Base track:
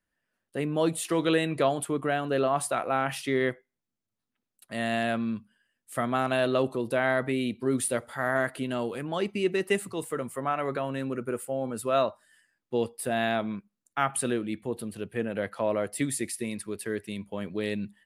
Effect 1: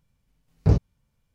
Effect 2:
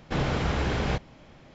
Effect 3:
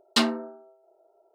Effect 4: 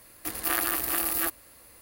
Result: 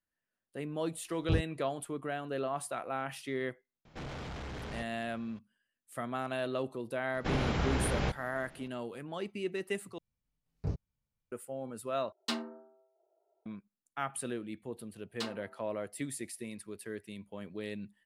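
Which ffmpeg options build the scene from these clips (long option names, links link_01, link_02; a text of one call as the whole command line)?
ffmpeg -i bed.wav -i cue0.wav -i cue1.wav -i cue2.wav -filter_complex "[1:a]asplit=2[link_01][link_02];[2:a]asplit=2[link_03][link_04];[3:a]asplit=2[link_05][link_06];[0:a]volume=-9.5dB[link_07];[link_03]asoftclip=type=tanh:threshold=-30.5dB[link_08];[link_06]highpass=360[link_09];[link_07]asplit=3[link_10][link_11][link_12];[link_10]atrim=end=9.984[link_13];[link_02]atrim=end=1.34,asetpts=PTS-STARTPTS,volume=-16.5dB[link_14];[link_11]atrim=start=11.316:end=12.124[link_15];[link_05]atrim=end=1.34,asetpts=PTS-STARTPTS,volume=-13dB[link_16];[link_12]atrim=start=13.456[link_17];[link_01]atrim=end=1.34,asetpts=PTS-STARTPTS,volume=-11.5dB,afade=type=in:duration=0.004:curve=hsin,afade=type=out:start_time=1.336:duration=0.004:curve=hsin,adelay=630[link_18];[link_08]atrim=end=1.54,asetpts=PTS-STARTPTS,volume=-8.5dB,afade=type=in:duration=0.004:curve=hsin,afade=type=out:start_time=1.536:duration=0.004:curve=hsin,adelay=169785S[link_19];[link_04]atrim=end=1.54,asetpts=PTS-STARTPTS,volume=-4.5dB,afade=type=in:duration=0.004:curve=hsin,afade=type=out:start_time=1.536:duration=0.004:curve=hsin,adelay=314874S[link_20];[link_09]atrim=end=1.34,asetpts=PTS-STARTPTS,volume=-17dB,afade=type=in:duration=0.004:curve=hsin,afade=type=out:start_time=1.336:duration=0.004:curve=hsin,adelay=15040[link_21];[link_13][link_14]acrossfade=duration=0.004:curve1=hsin:curve2=hsin[link_22];[link_22][link_15]acrossfade=duration=0.004:curve1=hsin:curve2=hsin[link_23];[link_23][link_16]acrossfade=duration=0.004:curve1=hsin:curve2=hsin[link_24];[link_24][link_17]acrossfade=duration=0.004:curve1=hsin:curve2=hsin[link_25];[link_25][link_18][link_19][link_20][link_21]amix=inputs=5:normalize=0" out.wav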